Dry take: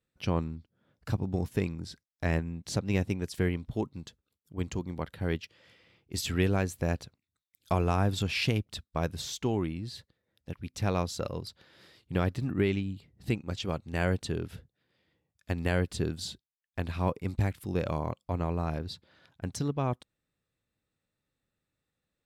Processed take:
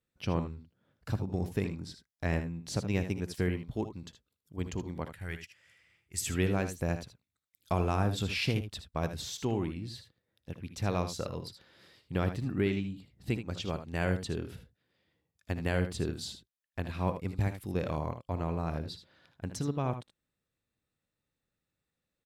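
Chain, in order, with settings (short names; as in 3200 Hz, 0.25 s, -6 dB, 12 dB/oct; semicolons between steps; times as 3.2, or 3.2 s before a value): 5.07–6.27 graphic EQ 125/250/500/1000/2000/4000/8000 Hz -5/-12/-9/-6/+5/-10/+9 dB; on a send: early reflections 60 ms -16.5 dB, 77 ms -10.5 dB; on the sum: gain -2.5 dB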